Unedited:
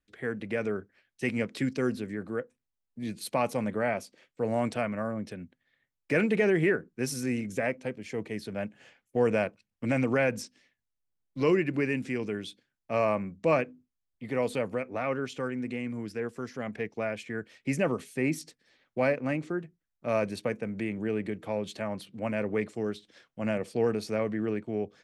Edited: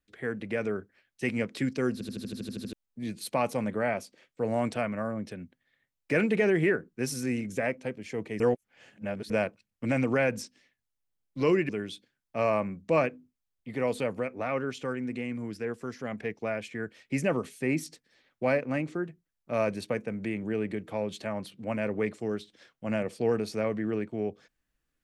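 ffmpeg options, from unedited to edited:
-filter_complex "[0:a]asplit=14[a][b][c][d][e][f][g][h][i][j][k][l][m][n];[a]atrim=end=2.012[o];[b]atrim=start=1.928:end=2.012[p];[c]atrim=start=1.928:end=2.012[q];[d]atrim=start=1.928:end=2.012[r];[e]atrim=start=1.928:end=2.012[s];[f]atrim=start=1.928:end=2.012[t];[g]atrim=start=1.928:end=2.012[u];[h]atrim=start=1.928:end=2.012[v];[i]atrim=start=1.928:end=2.012[w];[j]atrim=start=1.928:end=2.012[x];[k]atrim=start=2.728:end=8.402[y];[l]atrim=start=8.398:end=9.302,asetpts=PTS-STARTPTS,areverse[z];[m]atrim=start=9.298:end=11.692[aa];[n]atrim=start=12.238[ab];[o][p]acrossfade=d=0.004:c1=hsin:c2=hsin[ac];[ac][q]acrossfade=d=0.004:c1=hsin:c2=hsin[ad];[ad][r]acrossfade=d=0.004:c1=hsin:c2=hsin[ae];[ae][s]acrossfade=d=0.004:c1=hsin:c2=hsin[af];[af][t]acrossfade=d=0.004:c1=hsin:c2=hsin[ag];[ag][u]acrossfade=d=0.004:c1=hsin:c2=hsin[ah];[ah][v]acrossfade=d=0.004:c1=hsin:c2=hsin[ai];[ai][w]acrossfade=d=0.004:c1=hsin:c2=hsin[aj];[aj][x]acrossfade=d=0.004:c1=hsin:c2=hsin[ak];[ak][y]acrossfade=d=0.004:c1=hsin:c2=hsin[al];[al][z]acrossfade=d=0.004:c1=hsin:c2=hsin[am];[am][aa]acrossfade=d=0.004:c1=hsin:c2=hsin[an];[an][ab]acrossfade=d=0.004:c1=hsin:c2=hsin"

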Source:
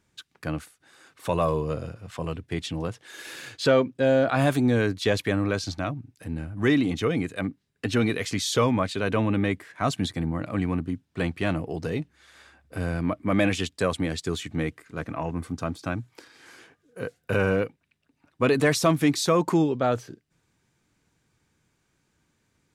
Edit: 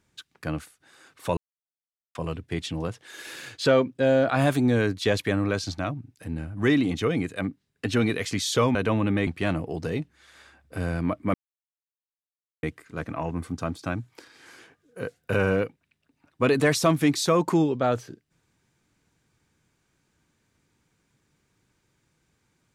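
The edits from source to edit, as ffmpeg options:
-filter_complex "[0:a]asplit=7[a][b][c][d][e][f][g];[a]atrim=end=1.37,asetpts=PTS-STARTPTS,afade=t=out:st=1.366:d=0.004:c=hsin[h];[b]atrim=start=1.37:end=2.15,asetpts=PTS-STARTPTS,volume=0[i];[c]atrim=start=2.15:end=8.752,asetpts=PTS-STARTPTS,afade=t=in:d=0.004:c=hsin[j];[d]atrim=start=9.018:end=9.542[k];[e]atrim=start=11.268:end=13.34,asetpts=PTS-STARTPTS,afade=t=out:st=2.068:d=0.004:c=hsin[l];[f]atrim=start=13.34:end=14.63,asetpts=PTS-STARTPTS,volume=0[m];[g]atrim=start=14.63,asetpts=PTS-STARTPTS,afade=t=in:d=0.004:c=hsin[n];[h][i][j]concat=n=3:v=0:a=1[o];[o][k]acrossfade=d=0.004:c1=hsin:c2=hsin[p];[l][m][n]concat=n=3:v=0:a=1[q];[p][q]acrossfade=d=0.004:c1=hsin:c2=hsin"

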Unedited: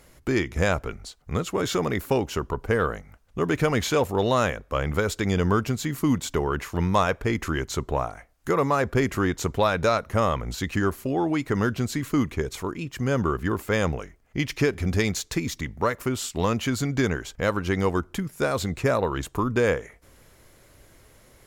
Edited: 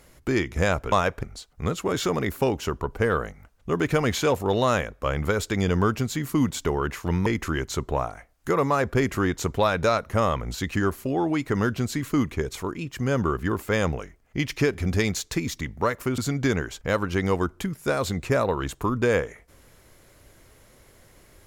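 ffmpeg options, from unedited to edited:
-filter_complex "[0:a]asplit=5[a][b][c][d][e];[a]atrim=end=0.922[f];[b]atrim=start=6.948:end=7.262[g];[c]atrim=start=0.918:end=6.952[h];[d]atrim=start=7.258:end=16.182[i];[e]atrim=start=16.718[j];[f][g]acrossfade=d=0.004:c1=hsin:c2=hsin[k];[k][h]acrossfade=d=0.004:c1=hsin:c2=hsin[l];[l][i]acrossfade=d=0.004:c1=hsin:c2=hsin[m];[m][j]acrossfade=d=0.004:c1=hsin:c2=hsin"

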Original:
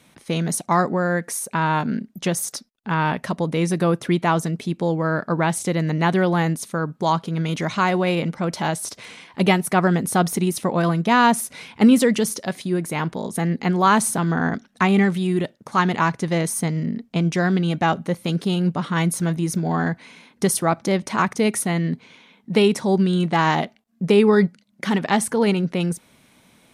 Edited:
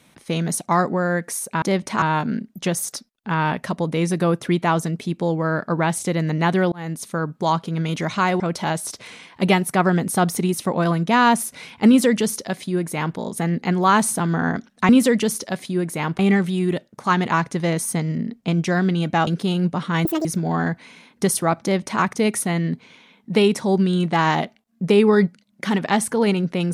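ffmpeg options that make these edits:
-filter_complex "[0:a]asplit=10[a][b][c][d][e][f][g][h][i][j];[a]atrim=end=1.622[k];[b]atrim=start=20.818:end=21.222[l];[c]atrim=start=1.618:end=6.32,asetpts=PTS-STARTPTS,afade=t=out:st=4.698:d=0.004:c=hsin[m];[d]atrim=start=6.32:end=8.002,asetpts=PTS-STARTPTS,afade=t=in:d=0.35[n];[e]atrim=start=8.378:end=14.872[o];[f]atrim=start=11.848:end=13.152[p];[g]atrim=start=14.868:end=17.952[q];[h]atrim=start=18.288:end=19.074[r];[i]atrim=start=19.07:end=19.45,asetpts=PTS-STARTPTS,asetrate=83790,aresample=44100[s];[j]atrim=start=19.446[t];[k][l]acrossfade=d=0.004:c1=hsin:c2=hsin[u];[m][n]concat=n=2:v=0:a=1[v];[u][v]acrossfade=d=0.004:c1=hsin:c2=hsin[w];[w][o]acrossfade=d=0.004:c1=hsin:c2=hsin[x];[x][p]acrossfade=d=0.004:c1=hsin:c2=hsin[y];[y][q]acrossfade=d=0.004:c1=hsin:c2=hsin[z];[z][r]acrossfade=d=0.004:c1=hsin:c2=hsin[aa];[aa][s]acrossfade=d=0.004:c1=hsin:c2=hsin[ab];[ab][t]acrossfade=d=0.004:c1=hsin:c2=hsin"

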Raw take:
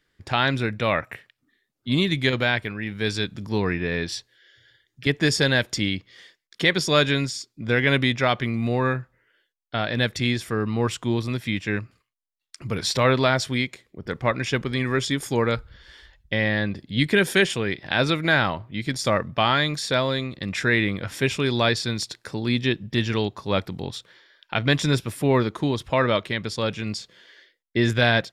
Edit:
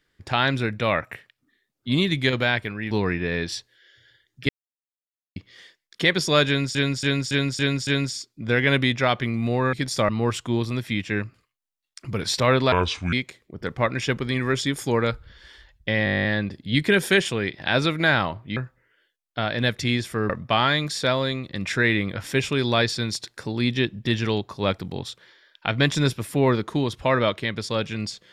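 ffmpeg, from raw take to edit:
-filter_complex "[0:a]asplit=25[a][b][c][d][e][f][g][h][i][j][k][l][m][n][o][p][q][r][s][t][u][v][w][x][y];[a]atrim=end=2.912[z];[b]atrim=start=3.508:end=5.09,asetpts=PTS-STARTPTS,afade=t=out:st=1.578:d=0.004:c=hsin[aa];[c]atrim=start=5.09:end=5.96,asetpts=PTS-STARTPTS,volume=0[ab];[d]atrim=start=5.96:end=7.352,asetpts=PTS-STARTPTS,afade=t=in:d=0.004:c=hsin[ac];[e]atrim=start=7.068:end=7.352[ad];[f]atrim=start=7.068:end=7.352[ae];[g]atrim=start=7.068:end=7.352[af];[h]atrim=start=7.068:end=7.352[ag];[i]atrim=start=7.068:end=8.932[ah];[j]atrim=start=18.808:end=19.172[ai];[k]atrim=start=10.658:end=13.294[aj];[l]atrim=start=13.29:end=13.57,asetpts=PTS-STARTPTS,asetrate=30429,aresample=44100[ak];[m]atrim=start=13.566:end=16.512[al];[n]atrim=start=16.488:end=16.512[am];[o]atrim=start=16.488:end=16.512[an];[p]atrim=start=16.488:end=16.512[ao];[q]atrim=start=16.488:end=16.512[ap];[r]atrim=start=16.488:end=16.512[aq];[s]atrim=start=16.488:end=16.512[ar];[t]atrim=start=16.488:end=16.512[as];[u]atrim=start=16.488:end=16.512[at];[v]atrim=start=16.488:end=16.512[au];[w]atrim=start=16.488:end=18.812[av];[x]atrim=start=8.928:end=10.662[aw];[y]atrim=start=19.168[ax];[aa][ab][ac]concat=n=3:v=0:a=1[ay];[z][ay]acrossfade=d=0.004:c1=hsin:c2=hsin[az];[az][ad]acrossfade=d=0.004:c1=hsin:c2=hsin[ba];[ba][ae]acrossfade=d=0.004:c1=hsin:c2=hsin[bb];[bb][af]acrossfade=d=0.004:c1=hsin:c2=hsin[bc];[bc][ag]acrossfade=d=0.004:c1=hsin:c2=hsin[bd];[bd][ah]acrossfade=d=0.004:c1=hsin:c2=hsin[be];[be][ai]acrossfade=d=0.004:c1=hsin:c2=hsin[bf];[bf][aj]acrossfade=d=0.004:c1=hsin:c2=hsin[bg];[bg][ak]acrossfade=d=0.004:c1=hsin:c2=hsin[bh];[bh][al]acrossfade=d=0.004:c1=hsin:c2=hsin[bi];[bi][am]acrossfade=d=0.004:c1=hsin:c2=hsin[bj];[bj][an]acrossfade=d=0.004:c1=hsin:c2=hsin[bk];[bk][ao]acrossfade=d=0.004:c1=hsin:c2=hsin[bl];[bl][ap]acrossfade=d=0.004:c1=hsin:c2=hsin[bm];[bm][aq]acrossfade=d=0.004:c1=hsin:c2=hsin[bn];[bn][ar]acrossfade=d=0.004:c1=hsin:c2=hsin[bo];[bo][as]acrossfade=d=0.004:c1=hsin:c2=hsin[bp];[bp][at]acrossfade=d=0.004:c1=hsin:c2=hsin[bq];[bq][au]acrossfade=d=0.004:c1=hsin:c2=hsin[br];[br][av]acrossfade=d=0.004:c1=hsin:c2=hsin[bs];[bs][aw]acrossfade=d=0.004:c1=hsin:c2=hsin[bt];[bt][ax]acrossfade=d=0.004:c1=hsin:c2=hsin"

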